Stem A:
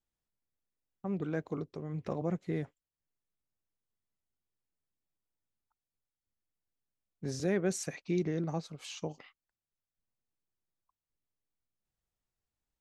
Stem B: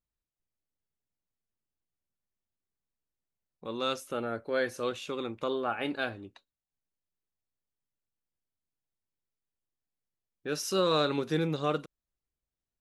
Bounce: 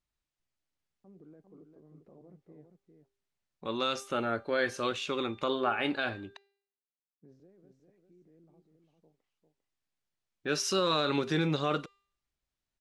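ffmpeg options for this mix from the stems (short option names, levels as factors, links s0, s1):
-filter_complex "[0:a]alimiter=level_in=2:limit=0.0631:level=0:latency=1:release=10,volume=0.501,bandpass=f=350:t=q:w=0.82:csg=0,volume=0.178,afade=t=out:st=7.3:d=0.26:silence=0.398107,asplit=2[s0][s1];[s1]volume=0.473[s2];[1:a]equalizer=f=2600:w=0.38:g=4,bandreject=f=480:w=12,alimiter=limit=0.0944:level=0:latency=1:release=38,volume=1.26,asplit=3[s3][s4][s5];[s3]atrim=end=6.37,asetpts=PTS-STARTPTS,afade=t=out:st=6.366:d=0.004:c=hsin[s6];[s4]atrim=start=6.37:end=7.28,asetpts=PTS-STARTPTS,volume=0[s7];[s5]atrim=start=7.28,asetpts=PTS-STARTPTS,afade=t=in:d=0.004:c=hsin[s8];[s6][s7][s8]concat=n=3:v=0:a=1[s9];[s2]aecho=0:1:399:1[s10];[s0][s9][s10]amix=inputs=3:normalize=0,lowpass=8100,bandreject=f=397.5:t=h:w=4,bandreject=f=795:t=h:w=4,bandreject=f=1192.5:t=h:w=4,bandreject=f=1590:t=h:w=4,bandreject=f=1987.5:t=h:w=4,bandreject=f=2385:t=h:w=4,bandreject=f=2782.5:t=h:w=4,bandreject=f=3180:t=h:w=4,bandreject=f=3577.5:t=h:w=4,bandreject=f=3975:t=h:w=4,bandreject=f=4372.5:t=h:w=4,bandreject=f=4770:t=h:w=4,bandreject=f=5167.5:t=h:w=4,bandreject=f=5565:t=h:w=4,bandreject=f=5962.5:t=h:w=4,bandreject=f=6360:t=h:w=4,bandreject=f=6757.5:t=h:w=4,bandreject=f=7155:t=h:w=4,bandreject=f=7552.5:t=h:w=4,bandreject=f=7950:t=h:w=4,bandreject=f=8347.5:t=h:w=4,bandreject=f=8745:t=h:w=4,bandreject=f=9142.5:t=h:w=4,bandreject=f=9540:t=h:w=4,bandreject=f=9937.5:t=h:w=4,bandreject=f=10335:t=h:w=4,bandreject=f=10732.5:t=h:w=4,bandreject=f=11130:t=h:w=4,bandreject=f=11527.5:t=h:w=4,bandreject=f=11925:t=h:w=4,bandreject=f=12322.5:t=h:w=4,bandreject=f=12720:t=h:w=4,bandreject=f=13117.5:t=h:w=4,bandreject=f=13515:t=h:w=4,bandreject=f=13912.5:t=h:w=4"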